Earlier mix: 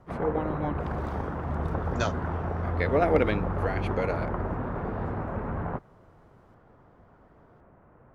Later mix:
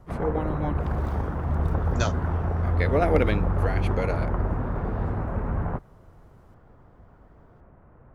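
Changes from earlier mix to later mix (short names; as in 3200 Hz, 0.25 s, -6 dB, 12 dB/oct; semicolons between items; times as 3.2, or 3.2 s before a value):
speech: remove LPF 3900 Hz 6 dB/oct; second sound: add high shelf 9700 Hz +10.5 dB; master: add low shelf 96 Hz +11.5 dB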